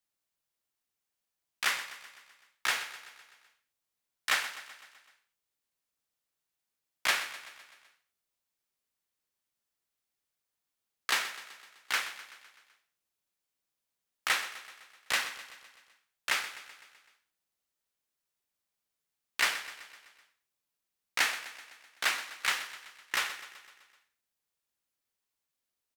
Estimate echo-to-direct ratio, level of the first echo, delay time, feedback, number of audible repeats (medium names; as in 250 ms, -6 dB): -12.0 dB, -14.0 dB, 127 ms, 59%, 5